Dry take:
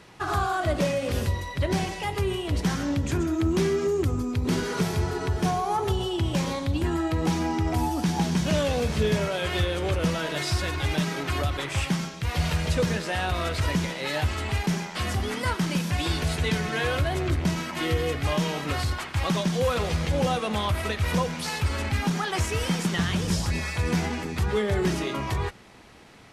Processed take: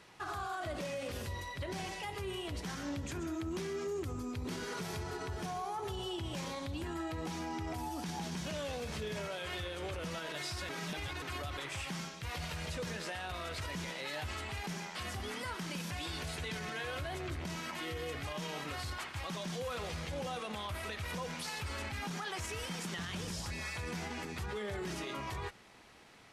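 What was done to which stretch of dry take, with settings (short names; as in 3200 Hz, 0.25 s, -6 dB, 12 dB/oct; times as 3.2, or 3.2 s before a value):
10.69–11.22 reverse
whole clip: low shelf 440 Hz -6.5 dB; limiter -25.5 dBFS; gain -6 dB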